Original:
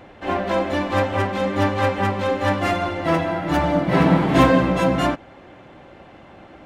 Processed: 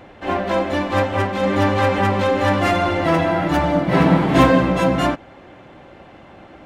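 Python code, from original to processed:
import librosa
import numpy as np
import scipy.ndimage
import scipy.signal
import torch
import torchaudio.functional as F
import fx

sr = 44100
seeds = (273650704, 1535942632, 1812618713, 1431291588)

y = fx.env_flatten(x, sr, amount_pct=50, at=(1.43, 3.48))
y = y * librosa.db_to_amplitude(1.5)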